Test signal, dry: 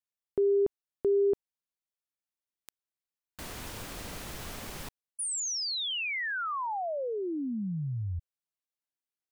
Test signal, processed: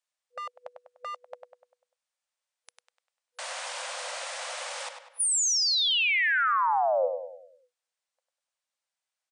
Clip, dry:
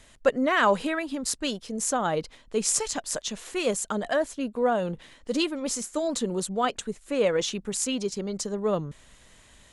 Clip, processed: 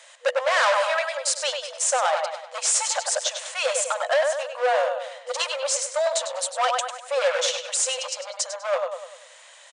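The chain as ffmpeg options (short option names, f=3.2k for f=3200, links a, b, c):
-filter_complex "[0:a]asplit=2[a][b];[b]adelay=99,lowpass=f=4.1k:p=1,volume=-6.5dB,asplit=2[c][d];[d]adelay=99,lowpass=f=4.1k:p=1,volume=0.47,asplit=2[e][f];[f]adelay=99,lowpass=f=4.1k:p=1,volume=0.47,asplit=2[g][h];[h]adelay=99,lowpass=f=4.1k:p=1,volume=0.47,asplit=2[i][j];[j]adelay=99,lowpass=f=4.1k:p=1,volume=0.47,asplit=2[k][l];[l]adelay=99,lowpass=f=4.1k:p=1,volume=0.47[m];[a][c][e][g][i][k][m]amix=inputs=7:normalize=0,asoftclip=type=hard:threshold=-24.5dB,afftfilt=real='re*between(b*sr/4096,490,9800)':imag='im*between(b*sr/4096,490,9800)':win_size=4096:overlap=0.75,volume=7.5dB"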